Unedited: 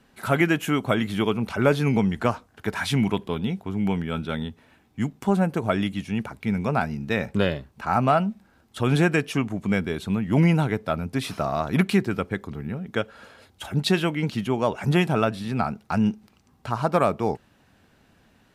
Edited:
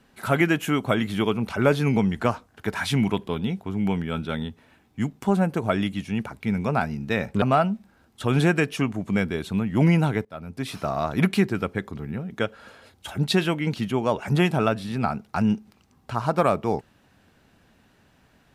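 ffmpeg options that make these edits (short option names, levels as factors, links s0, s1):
-filter_complex "[0:a]asplit=3[s0][s1][s2];[s0]atrim=end=7.422[s3];[s1]atrim=start=7.978:end=10.81,asetpts=PTS-STARTPTS,afade=t=out:st=2.828:d=0.004:c=hsin:silence=0.0891251[s4];[s2]atrim=start=10.81,asetpts=PTS-STARTPTS,afade=t=in:d=0.91:c=qsin:silence=0.0891251[s5];[s4][s5]concat=n=2:v=0:a=1[s6];[s3][s6]acrossfade=d=0.004:c1=hsin:c2=hsin"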